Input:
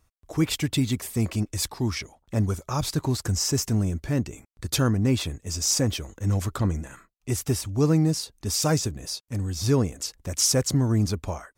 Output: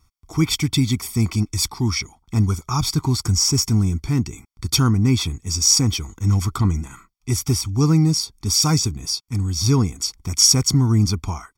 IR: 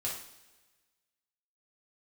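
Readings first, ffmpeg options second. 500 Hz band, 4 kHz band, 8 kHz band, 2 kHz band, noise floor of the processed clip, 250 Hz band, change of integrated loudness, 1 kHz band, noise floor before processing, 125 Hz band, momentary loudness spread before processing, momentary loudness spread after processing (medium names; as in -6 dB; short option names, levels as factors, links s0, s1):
-2.5 dB, +9.0 dB, +7.0 dB, +3.0 dB, -63 dBFS, +4.5 dB, +6.0 dB, +5.0 dB, -70 dBFS, +6.5 dB, 9 LU, 10 LU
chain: -af "equalizer=f=5300:w=3.6:g=8,aecho=1:1:0.9:0.96,volume=1.12"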